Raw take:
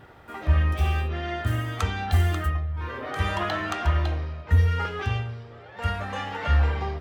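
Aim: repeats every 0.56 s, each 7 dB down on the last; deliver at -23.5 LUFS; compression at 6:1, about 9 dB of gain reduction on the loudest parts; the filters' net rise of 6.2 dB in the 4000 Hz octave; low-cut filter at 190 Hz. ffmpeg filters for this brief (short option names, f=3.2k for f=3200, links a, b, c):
-af "highpass=190,equalizer=f=4k:t=o:g=8.5,acompressor=threshold=-33dB:ratio=6,aecho=1:1:560|1120|1680|2240|2800:0.447|0.201|0.0905|0.0407|0.0183,volume=12dB"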